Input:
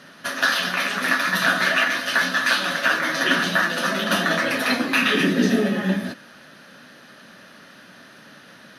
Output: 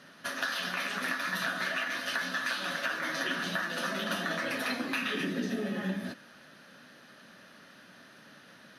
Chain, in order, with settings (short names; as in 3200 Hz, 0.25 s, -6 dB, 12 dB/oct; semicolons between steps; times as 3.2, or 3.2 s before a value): compressor, threshold -21 dBFS, peak gain reduction 7.5 dB; gain -8 dB